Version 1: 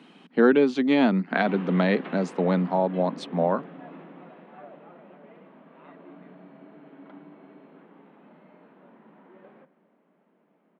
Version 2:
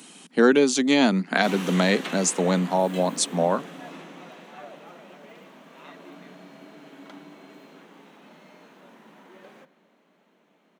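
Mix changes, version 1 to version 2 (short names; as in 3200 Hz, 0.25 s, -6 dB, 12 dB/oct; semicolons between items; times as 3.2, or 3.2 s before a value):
background: remove tape spacing loss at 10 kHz 24 dB; master: remove air absorption 380 m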